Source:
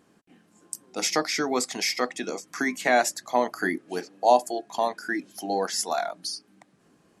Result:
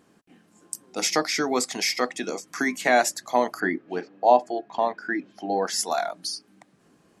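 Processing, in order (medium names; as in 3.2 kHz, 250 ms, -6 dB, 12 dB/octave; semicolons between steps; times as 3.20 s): 3.60–5.67 s: low-pass 2.7 kHz 12 dB/octave; trim +1.5 dB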